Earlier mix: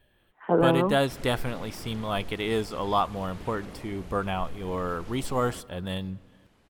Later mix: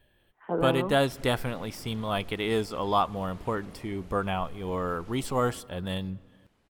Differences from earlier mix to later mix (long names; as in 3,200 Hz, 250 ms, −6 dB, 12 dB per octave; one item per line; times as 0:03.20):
first sound −7.0 dB
second sound −6.0 dB